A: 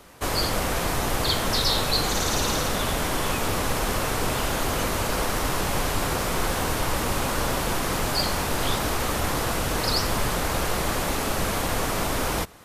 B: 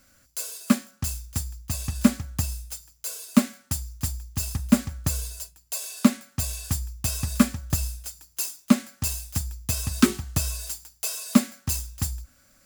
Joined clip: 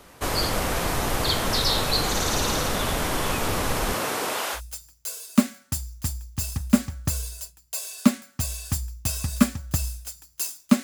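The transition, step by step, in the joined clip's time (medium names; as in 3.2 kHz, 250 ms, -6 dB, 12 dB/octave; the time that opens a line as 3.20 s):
A
3.94–4.61 s: high-pass 150 Hz -> 810 Hz
4.57 s: go over to B from 2.56 s, crossfade 0.08 s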